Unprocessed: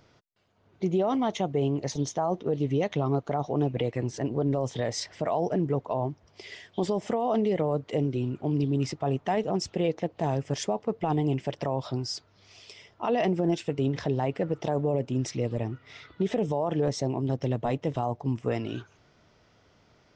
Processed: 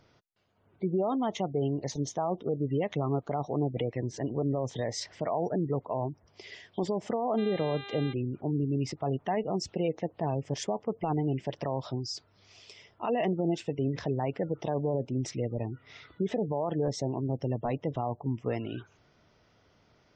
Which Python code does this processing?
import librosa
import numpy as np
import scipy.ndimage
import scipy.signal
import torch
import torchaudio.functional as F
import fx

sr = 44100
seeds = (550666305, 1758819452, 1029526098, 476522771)

y = fx.spec_gate(x, sr, threshold_db=-30, keep='strong')
y = fx.dmg_buzz(y, sr, base_hz=400.0, harmonics=10, level_db=-41.0, tilt_db=-1, odd_only=False, at=(7.37, 8.12), fade=0.02)
y = y * 10.0 ** (-3.0 / 20.0)